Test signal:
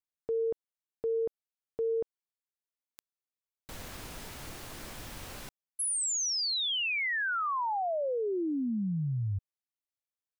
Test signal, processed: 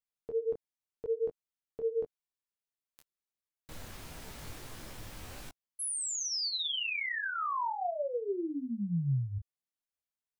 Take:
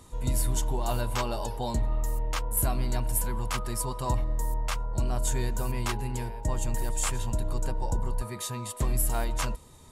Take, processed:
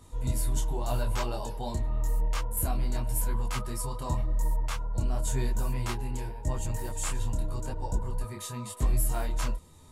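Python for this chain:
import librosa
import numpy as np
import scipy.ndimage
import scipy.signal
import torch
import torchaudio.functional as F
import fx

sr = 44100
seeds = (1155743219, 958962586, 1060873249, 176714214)

y = fx.low_shelf(x, sr, hz=180.0, db=4.0)
y = fx.detune_double(y, sr, cents=31)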